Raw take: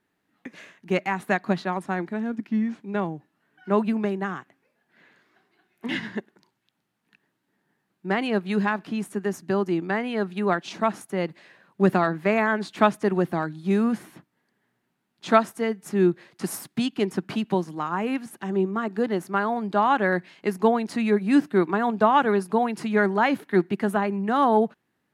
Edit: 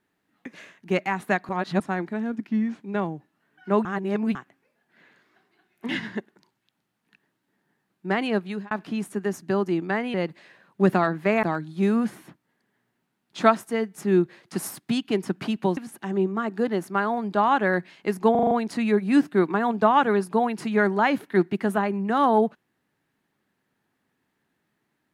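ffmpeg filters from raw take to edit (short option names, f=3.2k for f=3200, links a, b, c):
-filter_complex "[0:a]asplit=14[a][b][c][d][e][f][g][h][i][j][k][l][m][n];[a]atrim=end=1.492[o];[b]atrim=start=1.488:end=1.802,asetpts=PTS-STARTPTS,areverse[p];[c]atrim=start=1.798:end=3.852[q];[d]atrim=start=3.848:end=4.352,asetpts=PTS-STARTPTS,areverse[r];[e]atrim=start=4.348:end=8.71,asetpts=PTS-STARTPTS,afade=t=out:st=4.002:d=0.36[s];[f]atrim=start=8.71:end=10.142,asetpts=PTS-STARTPTS,afade=t=in:d=0.004:c=hsin[t];[g]atrim=start=11.138:end=12.432[u];[h]atrim=start=13.308:end=17.652[v];[i]atrim=start=18.158:end=20.742[w];[j]atrim=start=20.698:end=20.742[x];[k]atrim=start=20.698:end=20.742[y];[l]atrim=start=20.698:end=20.742[z];[m]atrim=start=20.698:end=20.742[aa];[n]atrim=start=20.698[ab];[o][p]acrossfade=d=0.004:c1=hsin:c2=hsin[ac];[ac][q]acrossfade=d=0.004:c1=hsin:c2=hsin[ad];[ad][r]acrossfade=d=0.004:c1=hsin:c2=hsin[ae];[s][t]concat=n=2:v=0:a=1[af];[ae][af]acrossfade=d=0.004:c1=hsin:c2=hsin[ag];[ag][u]acrossfade=d=0.004:c1=hsin:c2=hsin[ah];[ah][v]acrossfade=d=0.004:c1=hsin:c2=hsin[ai];[ai][w]acrossfade=d=0.004:c1=hsin:c2=hsin[aj];[aj][x]acrossfade=d=0.004:c1=hsin:c2=hsin[ak];[ak][y]acrossfade=d=0.004:c1=hsin:c2=hsin[al];[al][z]acrossfade=d=0.004:c1=hsin:c2=hsin[am];[am][aa]acrossfade=d=0.004:c1=hsin:c2=hsin[an];[an][ab]acrossfade=d=0.004:c1=hsin:c2=hsin"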